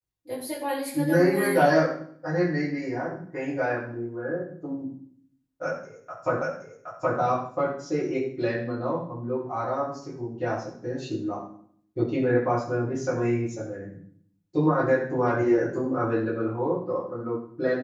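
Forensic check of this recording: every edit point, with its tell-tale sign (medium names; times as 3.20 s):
6.42 s: repeat of the last 0.77 s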